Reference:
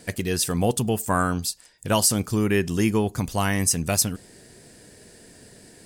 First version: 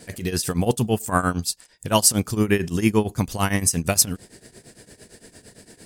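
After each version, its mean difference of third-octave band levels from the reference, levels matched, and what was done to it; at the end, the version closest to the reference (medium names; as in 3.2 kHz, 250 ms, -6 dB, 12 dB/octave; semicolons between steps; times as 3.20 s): 3.0 dB: tremolo triangle 8.8 Hz, depth 90%; trim +5.5 dB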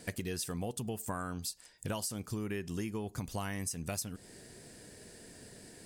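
5.0 dB: compression 10:1, threshold -30 dBFS, peak gain reduction 15 dB; trim -4 dB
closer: first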